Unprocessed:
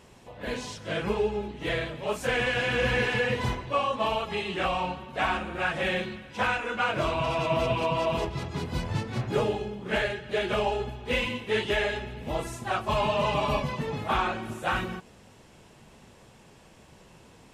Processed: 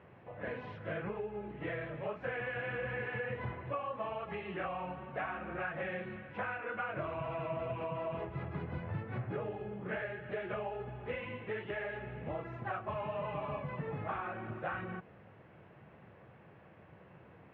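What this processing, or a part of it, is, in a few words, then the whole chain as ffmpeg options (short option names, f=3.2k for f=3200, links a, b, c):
bass amplifier: -af "acompressor=threshold=-33dB:ratio=5,highpass=f=82:w=0.5412,highpass=f=82:w=1.3066,equalizer=f=240:t=q:w=4:g=-8,equalizer=f=400:t=q:w=4:g=-3,equalizer=f=930:t=q:w=4:g=-5,lowpass=f=2.1k:w=0.5412,lowpass=f=2.1k:w=1.3066,volume=-1dB"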